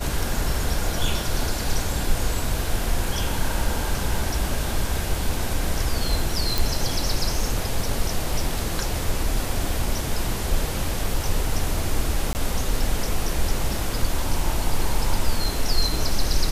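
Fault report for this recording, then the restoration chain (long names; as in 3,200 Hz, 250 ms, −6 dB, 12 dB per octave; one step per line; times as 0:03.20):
0:06.58: click
0:12.33–0:12.35: drop-out 19 ms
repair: click removal
repair the gap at 0:12.33, 19 ms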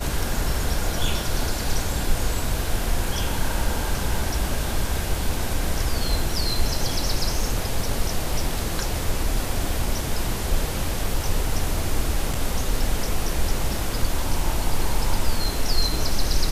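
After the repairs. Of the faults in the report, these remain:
none of them is left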